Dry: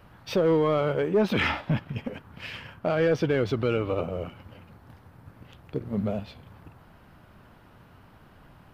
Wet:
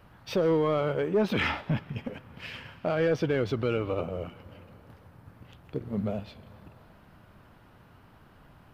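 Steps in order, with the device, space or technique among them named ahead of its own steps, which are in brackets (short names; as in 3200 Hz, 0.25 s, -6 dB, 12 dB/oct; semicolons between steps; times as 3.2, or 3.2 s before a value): compressed reverb return (on a send at -12 dB: reverb RT60 2.3 s, pre-delay 0.109 s + compressor, threshold -38 dBFS, peak gain reduction 17.5 dB); on the sum: gain -2.5 dB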